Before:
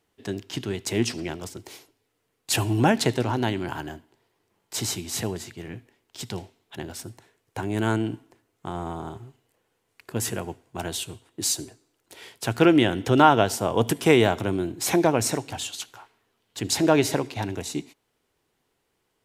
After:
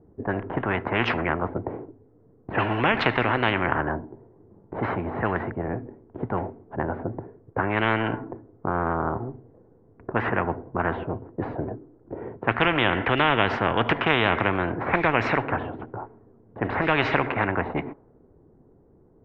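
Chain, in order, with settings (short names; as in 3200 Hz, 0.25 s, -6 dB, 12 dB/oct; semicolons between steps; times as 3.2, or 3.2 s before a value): inverse Chebyshev low-pass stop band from 9400 Hz, stop band 80 dB; low-pass opened by the level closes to 370 Hz, open at -18.5 dBFS; spectral compressor 4:1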